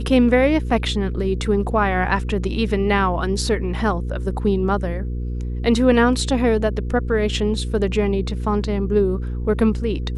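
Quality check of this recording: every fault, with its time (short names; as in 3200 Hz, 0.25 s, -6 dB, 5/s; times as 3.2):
hum 60 Hz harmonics 8 -25 dBFS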